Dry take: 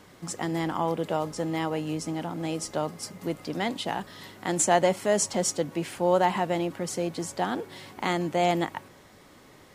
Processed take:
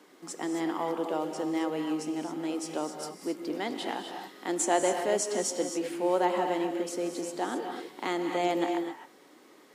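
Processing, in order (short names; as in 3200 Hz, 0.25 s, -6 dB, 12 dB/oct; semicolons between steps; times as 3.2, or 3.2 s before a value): ladder high-pass 250 Hz, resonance 40%; bell 570 Hz -2.5 dB 0.44 oct; non-linear reverb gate 0.29 s rising, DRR 4.5 dB; gain +3 dB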